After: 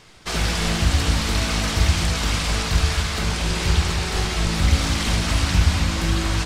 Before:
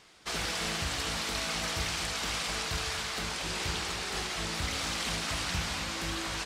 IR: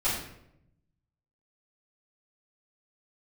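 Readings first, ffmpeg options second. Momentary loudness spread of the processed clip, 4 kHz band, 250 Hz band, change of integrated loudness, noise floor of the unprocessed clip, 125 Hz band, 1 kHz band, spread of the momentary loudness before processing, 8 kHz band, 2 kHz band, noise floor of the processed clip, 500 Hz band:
3 LU, +7.5 dB, +14.5 dB, +10.5 dB, -37 dBFS, +19.5 dB, +8.0 dB, 2 LU, +7.5 dB, +7.5 dB, -26 dBFS, +9.5 dB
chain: -filter_complex "[0:a]lowshelf=f=190:g=10.5,asplit=2[a][b];[1:a]atrim=start_sample=2205,lowshelf=f=330:g=7[c];[b][c]afir=irnorm=-1:irlink=0,volume=-18.5dB[d];[a][d]amix=inputs=2:normalize=0,volume=6.5dB"

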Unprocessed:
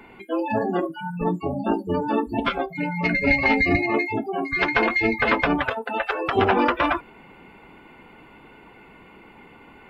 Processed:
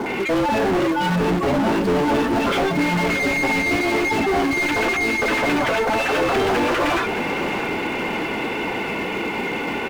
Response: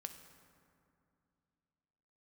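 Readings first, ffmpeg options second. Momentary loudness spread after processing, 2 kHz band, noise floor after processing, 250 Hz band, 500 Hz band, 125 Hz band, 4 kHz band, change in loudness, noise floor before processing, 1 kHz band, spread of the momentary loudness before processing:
5 LU, +3.0 dB, -26 dBFS, +4.0 dB, +5.0 dB, +4.0 dB, +7.5 dB, +2.5 dB, -49 dBFS, +3.5 dB, 8 LU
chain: -filter_complex "[0:a]equalizer=f=1.1k:t=o:w=1.8:g=-7.5,acompressor=threshold=-27dB:ratio=5,acrossover=split=1300[a][b];[b]adelay=60[c];[a][c]amix=inputs=2:normalize=0,acrusher=bits=4:mode=log:mix=0:aa=0.000001,asplit=2[d][e];[e]highpass=f=720:p=1,volume=37dB,asoftclip=type=tanh:threshold=-17dB[f];[d][f]amix=inputs=2:normalize=0,lowpass=f=1.8k:p=1,volume=-6dB,asplit=2[g][h];[h]aecho=0:1:620|1240|1860|2480|3100|3720|4340:0.299|0.17|0.097|0.0553|0.0315|0.018|0.0102[i];[g][i]amix=inputs=2:normalize=0,volume=4.5dB"

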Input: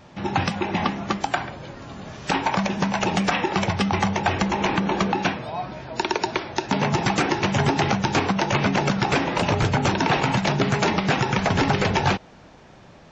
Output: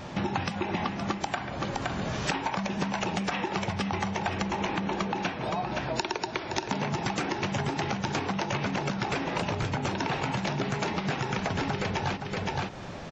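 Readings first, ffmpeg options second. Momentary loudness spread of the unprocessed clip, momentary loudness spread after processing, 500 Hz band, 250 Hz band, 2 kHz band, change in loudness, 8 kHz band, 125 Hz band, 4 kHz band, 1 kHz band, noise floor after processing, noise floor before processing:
7 LU, 2 LU, -7.5 dB, -7.5 dB, -7.5 dB, -8.0 dB, -6.5 dB, -7.5 dB, -7.0 dB, -7.5 dB, -39 dBFS, -48 dBFS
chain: -af "aecho=1:1:518:0.251,acompressor=threshold=-35dB:ratio=10,volume=8dB"

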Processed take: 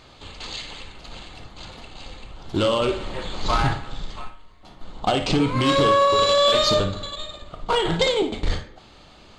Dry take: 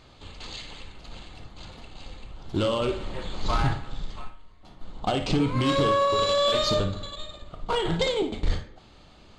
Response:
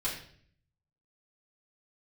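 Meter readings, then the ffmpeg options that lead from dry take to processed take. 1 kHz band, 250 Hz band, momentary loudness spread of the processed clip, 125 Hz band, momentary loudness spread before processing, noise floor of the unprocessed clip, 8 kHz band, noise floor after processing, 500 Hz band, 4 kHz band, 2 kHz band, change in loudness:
+5.5 dB, +3.0 dB, 23 LU, +1.5 dB, 23 LU, -52 dBFS, +6.0 dB, -49 dBFS, +5.0 dB, +6.0 dB, +6.0 dB, +4.5 dB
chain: -af "lowshelf=f=300:g=-5,volume=6dB"

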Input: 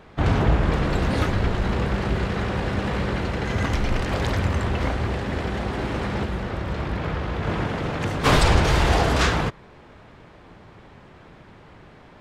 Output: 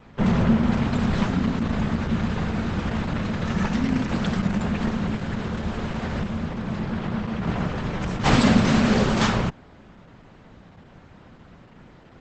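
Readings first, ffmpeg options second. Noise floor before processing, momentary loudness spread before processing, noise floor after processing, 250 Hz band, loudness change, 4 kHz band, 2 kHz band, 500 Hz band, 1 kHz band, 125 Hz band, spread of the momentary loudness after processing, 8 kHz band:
-48 dBFS, 8 LU, -50 dBFS, +5.5 dB, 0.0 dB, -2.5 dB, -3.0 dB, -3.0 dB, -3.0 dB, -1.5 dB, 10 LU, -2.5 dB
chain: -af "afreqshift=-280" -ar 48000 -c:a libopus -b:a 12k

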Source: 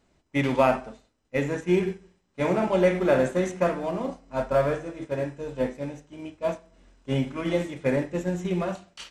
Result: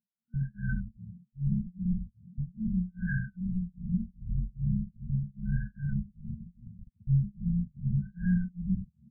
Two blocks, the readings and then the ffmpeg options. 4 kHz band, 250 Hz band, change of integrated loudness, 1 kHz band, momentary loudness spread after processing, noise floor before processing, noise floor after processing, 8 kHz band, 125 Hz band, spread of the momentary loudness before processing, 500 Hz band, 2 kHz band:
under -40 dB, -4.0 dB, -6.5 dB, under -40 dB, 14 LU, -70 dBFS, -77 dBFS, under -35 dB, +2.5 dB, 13 LU, under -40 dB, -11.0 dB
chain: -filter_complex "[0:a]aeval=exprs='val(0)+0.5*0.0251*sgn(val(0))':c=same,acrossover=split=700[a][b];[a]acrusher=bits=5:mix=0:aa=0.000001[c];[c][b]amix=inputs=2:normalize=0,asplit=8[d][e][f][g][h][i][j][k];[e]adelay=129,afreqshift=66,volume=-3dB[l];[f]adelay=258,afreqshift=132,volume=-8.5dB[m];[g]adelay=387,afreqshift=198,volume=-14dB[n];[h]adelay=516,afreqshift=264,volume=-19.5dB[o];[i]adelay=645,afreqshift=330,volume=-25.1dB[p];[j]adelay=774,afreqshift=396,volume=-30.6dB[q];[k]adelay=903,afreqshift=462,volume=-36.1dB[r];[d][l][m][n][o][p][q][r]amix=inputs=8:normalize=0,afftfilt=real='re*(1-between(b*sr/4096,230,1500))':imag='im*(1-between(b*sr/4096,230,1500))':win_size=4096:overlap=0.75,alimiter=limit=-22dB:level=0:latency=1:release=27,bass=f=250:g=4,treble=f=4k:g=15,tremolo=f=2.5:d=0.99,lowshelf=f=75:g=12,afftfilt=real='re*lt(b*sr/1024,380*pow(1700/380,0.5+0.5*sin(2*PI*0.39*pts/sr)))':imag='im*lt(b*sr/1024,380*pow(1700/380,0.5+0.5*sin(2*PI*0.39*pts/sr)))':win_size=1024:overlap=0.75"

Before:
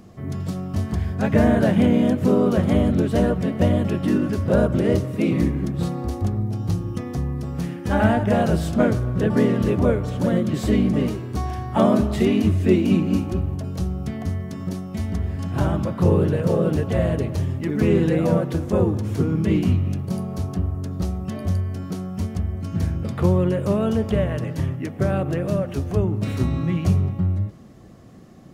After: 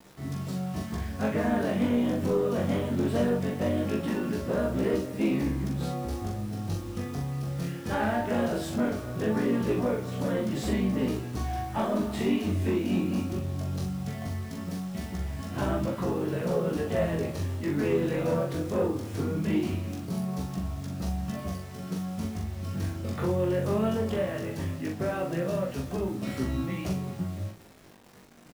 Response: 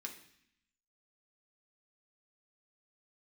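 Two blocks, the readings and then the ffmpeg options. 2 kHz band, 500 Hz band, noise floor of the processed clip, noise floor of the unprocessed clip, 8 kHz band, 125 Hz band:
-5.0 dB, -6.5 dB, -40 dBFS, -33 dBFS, -2.5 dB, -10.0 dB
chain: -filter_complex "[0:a]bandreject=f=60:t=h:w=6,bandreject=f=120:t=h:w=6,acrossover=split=220[a][b];[a]acompressor=threshold=-28dB:ratio=3[c];[c][b]amix=inputs=2:normalize=0,alimiter=limit=-12dB:level=0:latency=1:release=306,aeval=exprs='sgn(val(0))*max(abs(val(0))-0.00376,0)':c=same,acrusher=bits=7:mix=0:aa=0.000001,asoftclip=type=tanh:threshold=-16.5dB,flanger=delay=15:depth=7.5:speed=0.19,asplit=2[d][e];[e]adelay=42,volume=-4dB[f];[d][f]amix=inputs=2:normalize=0,asplit=2[g][h];[1:a]atrim=start_sample=2205[i];[h][i]afir=irnorm=-1:irlink=0,volume=-10.5dB[j];[g][j]amix=inputs=2:normalize=0,volume=-1.5dB"

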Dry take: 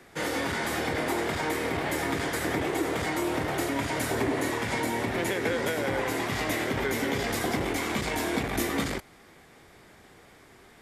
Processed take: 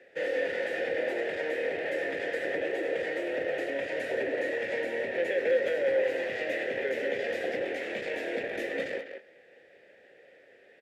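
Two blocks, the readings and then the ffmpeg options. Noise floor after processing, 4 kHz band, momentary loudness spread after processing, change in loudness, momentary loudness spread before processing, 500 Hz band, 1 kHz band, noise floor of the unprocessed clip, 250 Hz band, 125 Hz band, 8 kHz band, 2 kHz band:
-58 dBFS, -8.5 dB, 6 LU, -2.0 dB, 1 LU, +2.5 dB, -12.0 dB, -55 dBFS, -10.0 dB, under -15 dB, under -15 dB, -2.0 dB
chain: -filter_complex "[0:a]asplit=3[a][b][c];[a]bandpass=f=530:t=q:w=8,volume=0dB[d];[b]bandpass=f=1.84k:t=q:w=8,volume=-6dB[e];[c]bandpass=f=2.48k:t=q:w=8,volume=-9dB[f];[d][e][f]amix=inputs=3:normalize=0,asplit=2[g][h];[h]adelay=200,highpass=300,lowpass=3.4k,asoftclip=type=hard:threshold=-34dB,volume=-7dB[i];[g][i]amix=inputs=2:normalize=0,volume=8dB"

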